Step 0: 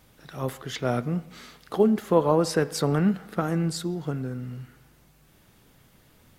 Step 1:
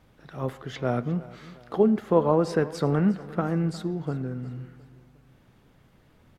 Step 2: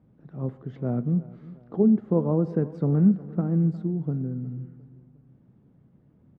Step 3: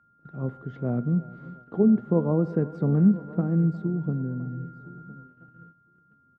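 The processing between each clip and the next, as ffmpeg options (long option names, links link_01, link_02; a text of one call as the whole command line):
ffmpeg -i in.wav -af "lowpass=frequency=1900:poles=1,aecho=1:1:357|714|1071:0.112|0.0494|0.0217" out.wav
ffmpeg -i in.wav -af "bandpass=frequency=180:width_type=q:width=1.2:csg=0,volume=4.5dB" out.wav
ffmpeg -i in.wav -af "aecho=1:1:1013|2026|3039:0.1|0.032|0.0102,aeval=exprs='val(0)+0.00398*sin(2*PI*1400*n/s)':channel_layout=same,agate=range=-13dB:threshold=-46dB:ratio=16:detection=peak" out.wav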